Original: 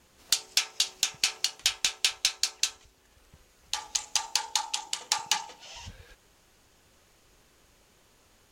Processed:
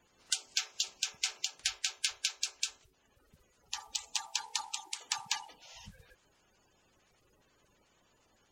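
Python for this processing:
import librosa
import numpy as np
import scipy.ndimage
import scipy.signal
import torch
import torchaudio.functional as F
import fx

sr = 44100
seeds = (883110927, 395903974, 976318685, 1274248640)

y = fx.spec_quant(x, sr, step_db=30)
y = F.gain(torch.from_numpy(y), -7.0).numpy()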